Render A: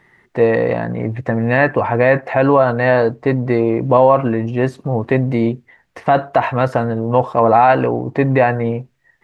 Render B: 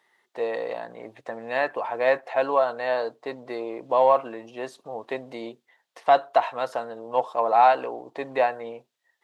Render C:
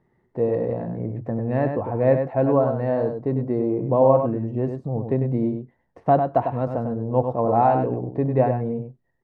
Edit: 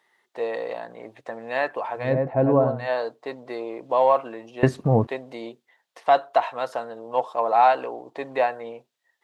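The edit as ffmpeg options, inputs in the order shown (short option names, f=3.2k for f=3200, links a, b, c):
-filter_complex "[1:a]asplit=3[a][b][c];[a]atrim=end=2.19[d];[2:a]atrim=start=1.95:end=2.9[e];[b]atrim=start=2.66:end=4.632[f];[0:a]atrim=start=4.628:end=5.072[g];[c]atrim=start=5.068[h];[d][e]acrossfade=d=0.24:c1=tri:c2=tri[i];[i][f]acrossfade=d=0.24:c1=tri:c2=tri[j];[j][g]acrossfade=d=0.004:c1=hsin:c2=hsin[k];[k][h]acrossfade=d=0.004:c1=hsin:c2=hsin"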